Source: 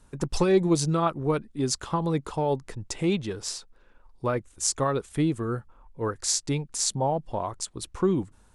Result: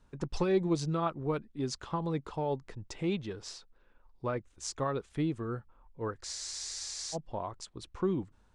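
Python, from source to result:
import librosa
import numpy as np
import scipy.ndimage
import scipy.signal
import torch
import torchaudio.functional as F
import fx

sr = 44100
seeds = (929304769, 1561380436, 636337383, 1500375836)

y = scipy.signal.sosfilt(scipy.signal.butter(2, 5100.0, 'lowpass', fs=sr, output='sos'), x)
y = fx.spec_freeze(y, sr, seeds[0], at_s=6.28, hold_s=0.87)
y = y * librosa.db_to_amplitude(-7.0)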